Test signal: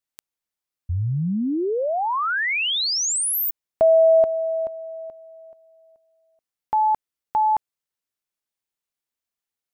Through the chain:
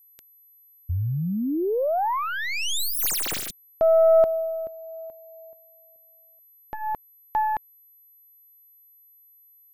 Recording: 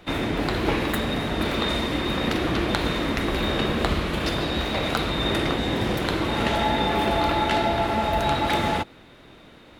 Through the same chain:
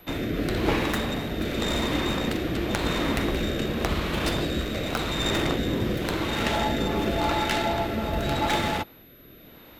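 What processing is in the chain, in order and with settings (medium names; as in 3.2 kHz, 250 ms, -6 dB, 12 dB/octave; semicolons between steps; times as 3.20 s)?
tracing distortion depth 0.16 ms; rotary cabinet horn 0.9 Hz; whistle 12 kHz -53 dBFS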